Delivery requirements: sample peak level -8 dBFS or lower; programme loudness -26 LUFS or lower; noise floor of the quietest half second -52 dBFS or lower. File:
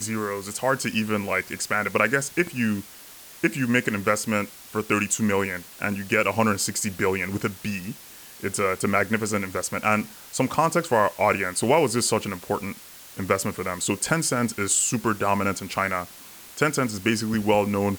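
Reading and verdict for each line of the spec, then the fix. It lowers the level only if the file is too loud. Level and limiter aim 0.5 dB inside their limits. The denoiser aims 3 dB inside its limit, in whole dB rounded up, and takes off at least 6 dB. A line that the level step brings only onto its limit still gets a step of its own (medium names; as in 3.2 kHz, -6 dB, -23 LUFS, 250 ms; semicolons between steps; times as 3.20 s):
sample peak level -6.5 dBFS: fail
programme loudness -24.0 LUFS: fail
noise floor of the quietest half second -45 dBFS: fail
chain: noise reduction 8 dB, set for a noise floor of -45 dBFS; trim -2.5 dB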